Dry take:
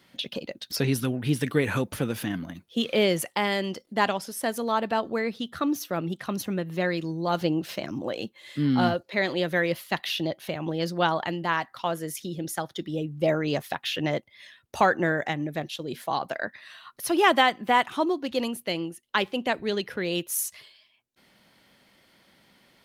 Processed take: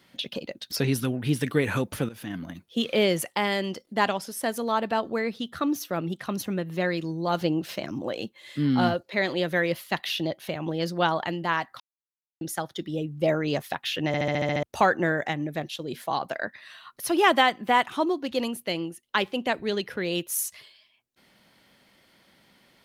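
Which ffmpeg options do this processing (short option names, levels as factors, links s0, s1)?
-filter_complex "[0:a]asplit=12[s0][s1][s2][s3][s4][s5][s6][s7][s8][s9][s10][s11];[s0]atrim=end=2.09,asetpts=PTS-STARTPTS,afade=t=out:st=2.086:d=0.004:c=hsin:silence=0.141254[s12];[s1]atrim=start=2.09:end=11.8,asetpts=PTS-STARTPTS,afade=t=in:d=0.4:silence=0.141254,afade=t=out:st=9.706:d=0.004:c=hsin[s13];[s2]atrim=start=11.8:end=12.41,asetpts=PTS-STARTPTS,volume=0[s14];[s3]atrim=start=12.41:end=14.142,asetpts=PTS-STARTPTS,afade=t=in:d=0.004:c=hsin[s15];[s4]atrim=start=14.068:end=14.142[s16];[s5]atrim=start=14.068:end=14.142[s17];[s6]atrim=start=14.068:end=14.142[s18];[s7]atrim=start=14.068:end=14.142[s19];[s8]atrim=start=14.068:end=14.142[s20];[s9]atrim=start=14.068:end=14.142[s21];[s10]atrim=start=14.068:end=14.142[s22];[s11]atrim=start=14.628[s23];[s12][s13][s14][s15]concat=n=4:v=0:a=1[s24];[s24][s16]acrossfade=d=0.004:c1=hsin:c2=hsin[s25];[s25][s17]acrossfade=d=0.004:c1=hsin:c2=hsin[s26];[s26][s18]acrossfade=d=0.004:c1=hsin:c2=hsin[s27];[s27][s19]acrossfade=d=0.004:c1=hsin:c2=hsin[s28];[s28][s20]acrossfade=d=0.004:c1=hsin:c2=hsin[s29];[s29][s21]acrossfade=d=0.004:c1=hsin:c2=hsin[s30];[s30][s22]acrossfade=d=0.004:c1=hsin:c2=hsin[s31];[s31][s23]acrossfade=d=0.004:c1=hsin:c2=hsin"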